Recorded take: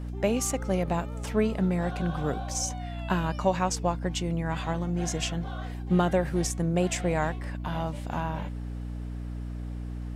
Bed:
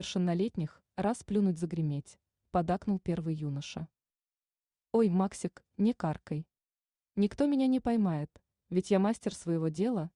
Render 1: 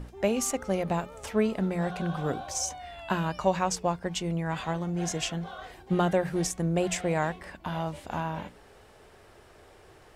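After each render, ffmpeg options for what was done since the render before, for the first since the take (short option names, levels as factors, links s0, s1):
-af "bandreject=f=60:t=h:w=6,bandreject=f=120:t=h:w=6,bandreject=f=180:t=h:w=6,bandreject=f=240:t=h:w=6,bandreject=f=300:t=h:w=6"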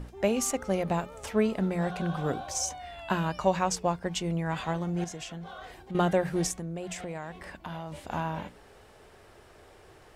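-filter_complex "[0:a]asettb=1/sr,asplit=3[s0][s1][s2];[s0]atrim=end=5.044[s3];[s1]atrim=start=5.04:end=5.95,asetpts=PTS-STARTPTS,afade=t=in:d=0.004:c=qsin,afade=t=out:st=0.906:d=0.004:c=qsin,acompressor=threshold=0.0112:ratio=3:attack=3.2:release=140:knee=1:detection=peak[s4];[s2]atrim=start=5.946[s5];[s3][s4]acrossfade=d=0.004:c1=hsin:c2=qsin[s6];[s6][s5]acrossfade=d=0.004:c1=qsin:c2=hsin,asettb=1/sr,asplit=3[s7][s8][s9];[s7]atrim=end=6.554[s10];[s8]atrim=start=6.55:end=7.92,asetpts=PTS-STARTPTS,afade=t=in:d=0.004:c=qsin,afade=t=out:st=1.366:d=0.004:c=qsin,acompressor=threshold=0.02:ratio=5:attack=3.2:release=140:knee=1:detection=peak[s11];[s9]atrim=start=7.916[s12];[s10][s11]acrossfade=d=0.004:c1=hsin:c2=qsin[s13];[s13][s12]acrossfade=d=0.004:c1=qsin:c2=hsin"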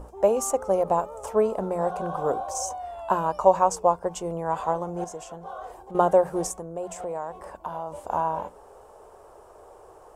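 -af "equalizer=f=125:t=o:w=1:g=-8,equalizer=f=250:t=o:w=1:g=-5,equalizer=f=500:t=o:w=1:g=8,equalizer=f=1000:t=o:w=1:g=11,equalizer=f=2000:t=o:w=1:g=-12,equalizer=f=4000:t=o:w=1:g=-10,equalizer=f=8000:t=o:w=1:g=4"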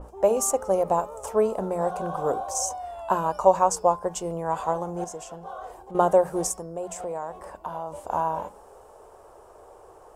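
-af "bandreject=f=207.6:t=h:w=4,bandreject=f=415.2:t=h:w=4,bandreject=f=622.8:t=h:w=4,bandreject=f=830.4:t=h:w=4,bandreject=f=1038:t=h:w=4,bandreject=f=1245.6:t=h:w=4,bandreject=f=1453.2:t=h:w=4,bandreject=f=1660.8:t=h:w=4,bandreject=f=1868.4:t=h:w=4,bandreject=f=2076:t=h:w=4,bandreject=f=2283.6:t=h:w=4,bandreject=f=2491.2:t=h:w=4,bandreject=f=2698.8:t=h:w=4,bandreject=f=2906.4:t=h:w=4,bandreject=f=3114:t=h:w=4,bandreject=f=3321.6:t=h:w=4,bandreject=f=3529.2:t=h:w=4,bandreject=f=3736.8:t=h:w=4,bandreject=f=3944.4:t=h:w=4,bandreject=f=4152:t=h:w=4,bandreject=f=4359.6:t=h:w=4,bandreject=f=4567.2:t=h:w=4,bandreject=f=4774.8:t=h:w=4,bandreject=f=4982.4:t=h:w=4,bandreject=f=5190:t=h:w=4,bandreject=f=5397.6:t=h:w=4,adynamicequalizer=threshold=0.00631:dfrequency=4800:dqfactor=0.7:tfrequency=4800:tqfactor=0.7:attack=5:release=100:ratio=0.375:range=2.5:mode=boostabove:tftype=highshelf"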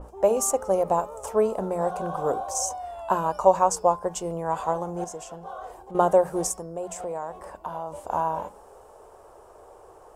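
-af anull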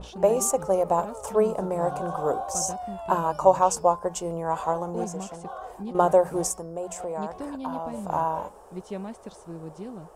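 -filter_complex "[1:a]volume=0.398[s0];[0:a][s0]amix=inputs=2:normalize=0"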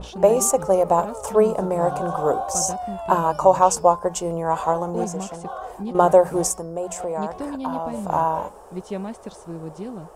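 -af "volume=1.78,alimiter=limit=0.794:level=0:latency=1"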